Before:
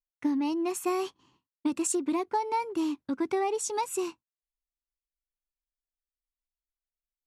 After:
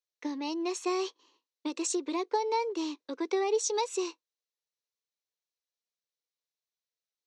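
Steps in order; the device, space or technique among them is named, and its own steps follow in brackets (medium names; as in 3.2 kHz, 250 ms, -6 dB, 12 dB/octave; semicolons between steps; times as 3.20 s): phone speaker on a table (cabinet simulation 360–7100 Hz, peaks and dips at 480 Hz +8 dB, 770 Hz -5 dB, 1.4 kHz -6 dB, 4 kHz +8 dB, 5.9 kHz +7 dB)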